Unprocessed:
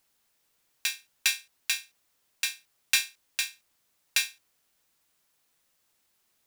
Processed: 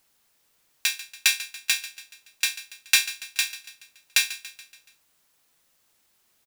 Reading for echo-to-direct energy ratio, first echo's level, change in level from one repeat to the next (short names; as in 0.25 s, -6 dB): -14.0 dB, -15.5 dB, -5.5 dB